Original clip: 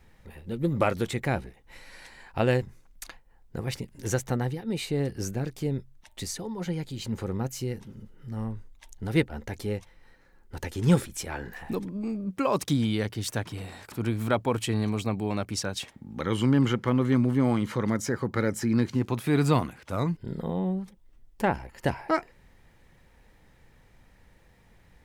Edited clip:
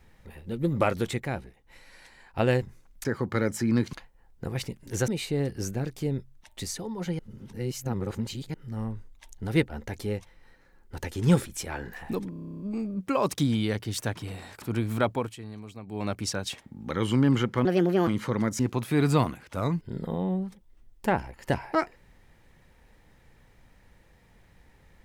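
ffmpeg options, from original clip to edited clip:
-filter_complex "[0:a]asplit=23[s0][s1][s2][s3][s4][s5][s6][s7][s8][s9][s10][s11][s12][s13][s14][s15][s16][s17][s18][s19][s20][s21][s22];[s0]atrim=end=1.182[s23];[s1]atrim=start=1.178:end=2.382,asetpts=PTS-STARTPTS,volume=0.596[s24];[s2]atrim=start=2.378:end=3.052[s25];[s3]atrim=start=18.068:end=18.952[s26];[s4]atrim=start=3.048:end=4.202[s27];[s5]atrim=start=4.678:end=6.792[s28];[s6]atrim=start=6.788:end=8.142,asetpts=PTS-STARTPTS,areverse[s29];[s7]atrim=start=8.138:end=11.932[s30];[s8]atrim=start=11.898:end=11.932[s31];[s9]atrim=start=11.898:end=11.932[s32];[s10]atrim=start=11.898:end=11.932[s33];[s11]atrim=start=11.898:end=11.932[s34];[s12]atrim=start=11.898:end=11.932[s35];[s13]atrim=start=11.898:end=11.932[s36];[s14]atrim=start=11.898:end=11.932[s37];[s15]atrim=start=11.898:end=11.932[s38];[s16]atrim=start=11.898:end=11.932[s39];[s17]atrim=start=11.898:end=14.65,asetpts=PTS-STARTPTS,afade=t=out:st=2.512:d=0.24:silence=0.199526[s40];[s18]atrim=start=14.65:end=15.15,asetpts=PTS-STARTPTS,volume=0.2[s41];[s19]atrim=start=15.15:end=16.954,asetpts=PTS-STARTPTS,afade=t=in:d=0.24:silence=0.199526[s42];[s20]atrim=start=16.95:end=17.55,asetpts=PTS-STARTPTS,asetrate=62622,aresample=44100[s43];[s21]atrim=start=17.546:end=18.072[s44];[s22]atrim=start=18.948[s45];[s23][s24]acrossfade=d=0.004:c1=hsin:c2=hsin[s46];[s46][s25]acrossfade=d=0.004:c1=hsin:c2=hsin[s47];[s47][s26]acrossfade=d=0.004:c1=hsin:c2=hsin[s48];[s48][s27]acrossfade=d=0.004:c1=hsin:c2=hsin[s49];[s49][s28]acrossfade=d=0.004:c1=hsin:c2=hsin[s50];[s50][s29]acrossfade=d=0.004:c1=hsin:c2=hsin[s51];[s51][s30]acrossfade=d=0.004:c1=hsin:c2=hsin[s52];[s52][s31]acrossfade=d=0.004:c1=hsin:c2=hsin[s53];[s53][s32]acrossfade=d=0.004:c1=hsin:c2=hsin[s54];[s54][s33]acrossfade=d=0.004:c1=hsin:c2=hsin[s55];[s55][s34]acrossfade=d=0.004:c1=hsin:c2=hsin[s56];[s56][s35]acrossfade=d=0.004:c1=hsin:c2=hsin[s57];[s57][s36]acrossfade=d=0.004:c1=hsin:c2=hsin[s58];[s58][s37]acrossfade=d=0.004:c1=hsin:c2=hsin[s59];[s59][s38]acrossfade=d=0.004:c1=hsin:c2=hsin[s60];[s60][s39]acrossfade=d=0.004:c1=hsin:c2=hsin[s61];[s40][s41][s42]concat=n=3:v=0:a=1[s62];[s61][s62]acrossfade=d=0.004:c1=hsin:c2=hsin[s63];[s63][s43]acrossfade=d=0.004:c1=hsin:c2=hsin[s64];[s64][s44]acrossfade=d=0.004:c1=hsin:c2=hsin[s65];[s65][s45]acrossfade=d=0.004:c1=hsin:c2=hsin"

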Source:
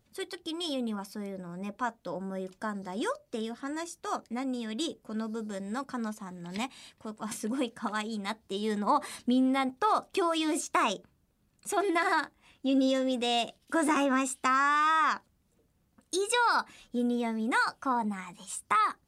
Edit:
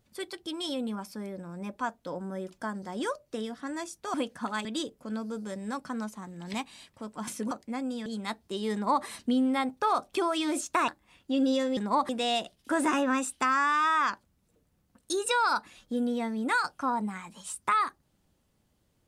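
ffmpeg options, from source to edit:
-filter_complex "[0:a]asplit=8[s0][s1][s2][s3][s4][s5][s6][s7];[s0]atrim=end=4.142[s8];[s1]atrim=start=7.548:end=8.062[s9];[s2]atrim=start=4.688:end=7.552[s10];[s3]atrim=start=4.138:end=4.692[s11];[s4]atrim=start=8.058:end=10.882[s12];[s5]atrim=start=12.228:end=13.122[s13];[s6]atrim=start=8.728:end=9.052[s14];[s7]atrim=start=13.118[s15];[s8][s9]acrossfade=d=0.004:c1=hsin:c2=hsin[s16];[s16][s10]acrossfade=d=0.004:c1=hsin:c2=hsin[s17];[s17][s11]acrossfade=d=0.004:c1=hsin:c2=hsin[s18];[s18][s12]acrossfade=d=0.004:c1=hsin:c2=hsin[s19];[s19][s13]acrossfade=d=0.004:c1=hsin:c2=hsin[s20];[s20][s14]acrossfade=d=0.004:c1=hsin:c2=hsin[s21];[s21][s15]acrossfade=d=0.004:c1=hsin:c2=hsin"

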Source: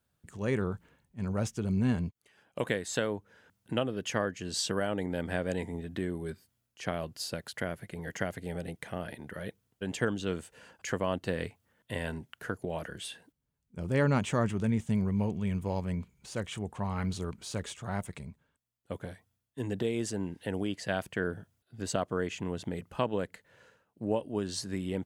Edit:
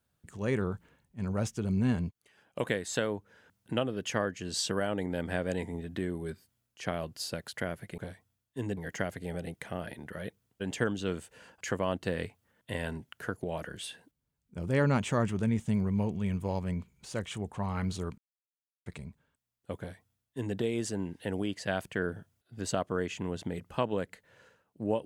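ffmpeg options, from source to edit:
-filter_complex "[0:a]asplit=5[s0][s1][s2][s3][s4];[s0]atrim=end=7.982[s5];[s1]atrim=start=18.988:end=19.782[s6];[s2]atrim=start=7.978:end=17.39,asetpts=PTS-STARTPTS,afade=t=out:st=9.408:d=0.004:c=hsin[s7];[s3]atrim=start=17.39:end=18.07,asetpts=PTS-STARTPTS,volume=0[s8];[s4]atrim=start=18.07,asetpts=PTS-STARTPTS,afade=t=in:d=0.004:c=hsin[s9];[s5][s6]acrossfade=d=0.004:c1=hsin:c2=hsin[s10];[s7][s8][s9]concat=n=3:v=0:a=1[s11];[s10][s11]acrossfade=d=0.004:c1=hsin:c2=hsin"

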